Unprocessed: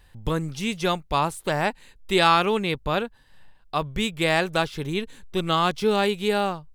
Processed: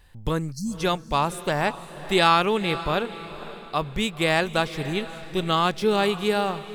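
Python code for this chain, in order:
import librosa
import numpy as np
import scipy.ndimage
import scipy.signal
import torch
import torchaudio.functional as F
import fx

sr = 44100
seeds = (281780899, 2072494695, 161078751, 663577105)

y = fx.spec_erase(x, sr, start_s=0.52, length_s=0.25, low_hz=240.0, high_hz=4100.0)
y = fx.echo_diffused(y, sr, ms=514, feedback_pct=42, wet_db=-14.0)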